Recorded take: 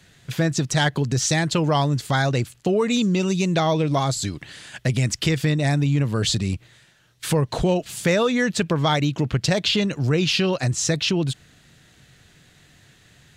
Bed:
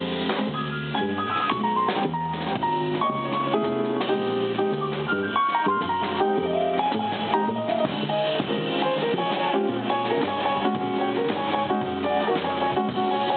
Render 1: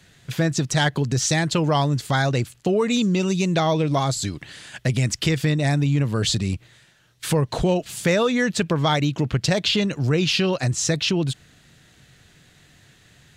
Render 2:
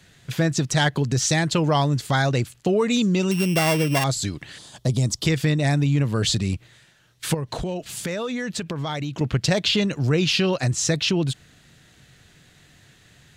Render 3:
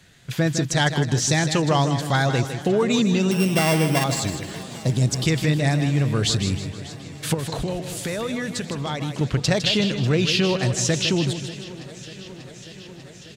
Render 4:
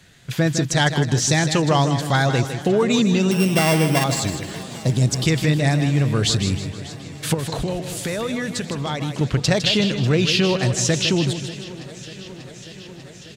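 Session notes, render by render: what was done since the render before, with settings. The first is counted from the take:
nothing audible
3.31–4.04 sample sorter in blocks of 16 samples; 4.58–5.26 band shelf 2000 Hz -13.5 dB 1.2 oct; 7.34–9.21 compressor 4:1, threshold -25 dBFS
on a send: feedback echo 0.157 s, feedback 41%, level -9 dB; on the sum: warbling echo 0.592 s, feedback 77%, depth 55 cents, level -18.5 dB
gain +2 dB

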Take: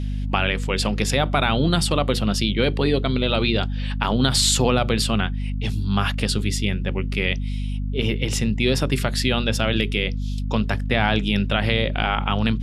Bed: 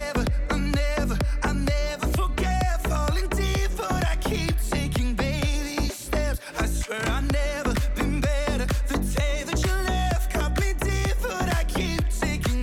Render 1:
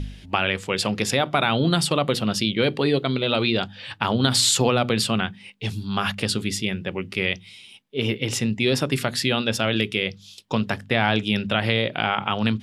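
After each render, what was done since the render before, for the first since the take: de-hum 50 Hz, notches 5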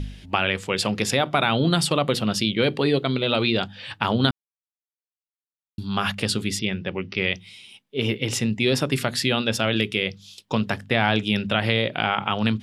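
4.31–5.78 mute; 6.59–7.34 brick-wall FIR low-pass 6100 Hz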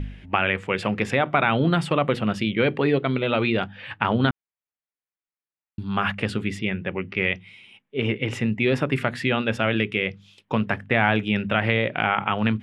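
LPF 9800 Hz 12 dB/oct; resonant high shelf 3200 Hz -12.5 dB, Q 1.5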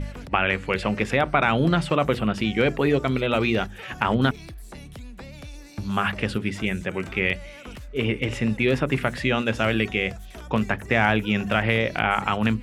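add bed -15.5 dB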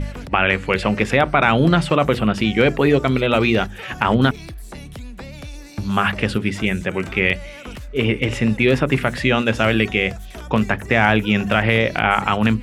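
gain +5.5 dB; limiter -2 dBFS, peak gain reduction 3 dB

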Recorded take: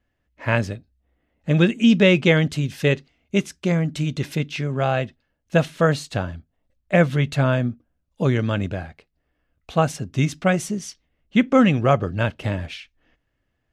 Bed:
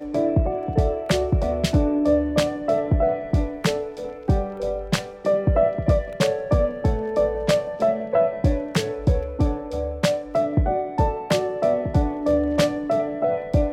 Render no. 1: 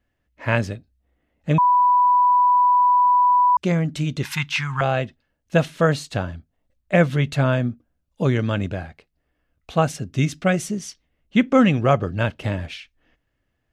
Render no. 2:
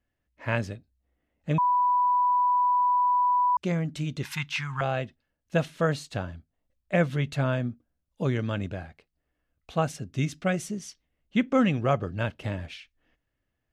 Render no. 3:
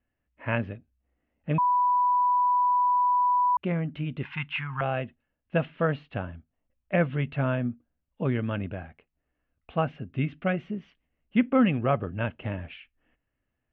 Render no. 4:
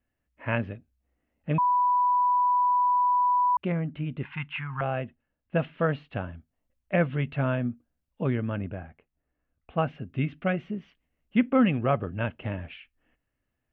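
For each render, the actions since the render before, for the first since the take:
1.58–3.57 bleep 988 Hz -12.5 dBFS; 4.25–4.81 EQ curve 130 Hz 0 dB, 560 Hz -28 dB, 890 Hz +14 dB, 3500 Hz +6 dB; 9.89–10.73 bell 940 Hz -6.5 dB 0.4 oct
gain -7 dB
Chebyshev low-pass 2900 Hz, order 4; bell 240 Hz +4 dB 0.26 oct
3.72–5.59 air absorption 230 m; 8.35–9.78 air absorption 350 m

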